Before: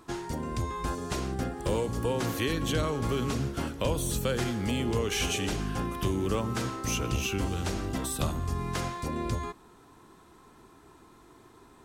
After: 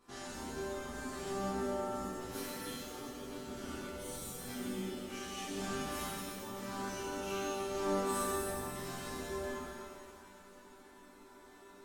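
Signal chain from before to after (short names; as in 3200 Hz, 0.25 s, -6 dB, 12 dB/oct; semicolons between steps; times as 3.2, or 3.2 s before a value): 5.78–6.18 spectral contrast lowered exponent 0.61; notches 50/100/150/200/250/300/350 Hz; negative-ratio compressor -34 dBFS, ratio -0.5; resonator bank G3 major, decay 0.39 s; thin delay 89 ms, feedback 84%, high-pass 4500 Hz, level -12 dB; shimmer reverb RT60 2 s, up +7 st, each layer -8 dB, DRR -9 dB; gain +3 dB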